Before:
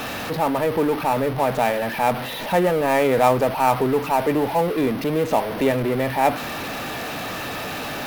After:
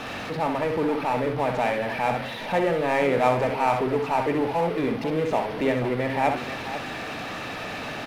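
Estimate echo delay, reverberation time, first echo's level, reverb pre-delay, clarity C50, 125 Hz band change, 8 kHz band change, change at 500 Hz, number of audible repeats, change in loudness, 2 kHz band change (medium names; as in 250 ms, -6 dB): 64 ms, no reverb, -6.5 dB, no reverb, no reverb, -3.5 dB, no reading, -4.0 dB, 2, -4.0 dB, -2.0 dB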